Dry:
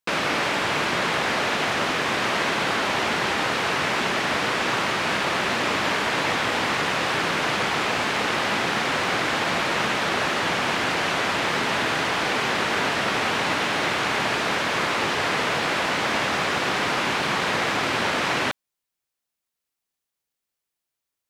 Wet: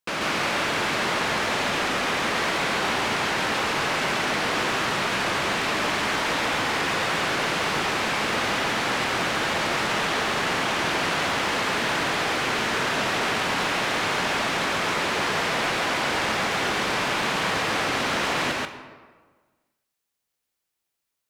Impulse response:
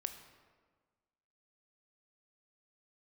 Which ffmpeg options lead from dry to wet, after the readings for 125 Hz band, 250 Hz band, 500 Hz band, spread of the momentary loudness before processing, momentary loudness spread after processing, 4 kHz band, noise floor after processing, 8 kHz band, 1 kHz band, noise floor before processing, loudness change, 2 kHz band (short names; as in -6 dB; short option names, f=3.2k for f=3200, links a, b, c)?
-1.0 dB, -1.0 dB, -1.0 dB, 0 LU, 0 LU, -0.5 dB, -81 dBFS, +1.0 dB, -1.0 dB, -84 dBFS, -1.0 dB, -1.0 dB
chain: -filter_complex "[0:a]asoftclip=type=tanh:threshold=-24dB,asplit=2[a][b];[1:a]atrim=start_sample=2205,adelay=138[c];[b][c]afir=irnorm=-1:irlink=0,volume=1.5dB[d];[a][d]amix=inputs=2:normalize=0"